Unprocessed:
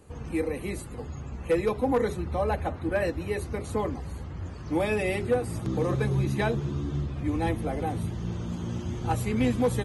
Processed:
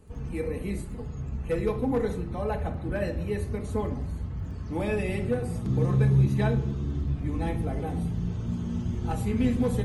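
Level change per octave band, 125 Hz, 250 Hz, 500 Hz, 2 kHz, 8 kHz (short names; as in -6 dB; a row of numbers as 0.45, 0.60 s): +3.5 dB, +0.5 dB, -2.5 dB, -4.5 dB, n/a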